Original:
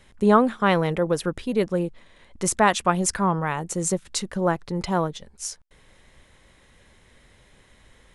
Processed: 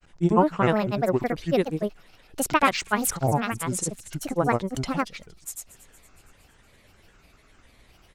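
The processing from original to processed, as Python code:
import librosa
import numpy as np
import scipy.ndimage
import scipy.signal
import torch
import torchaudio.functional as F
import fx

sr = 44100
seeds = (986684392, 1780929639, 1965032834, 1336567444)

y = fx.granulator(x, sr, seeds[0], grain_ms=100.0, per_s=20.0, spray_ms=100.0, spread_st=7)
y = fx.echo_wet_highpass(y, sr, ms=232, feedback_pct=56, hz=4700.0, wet_db=-16)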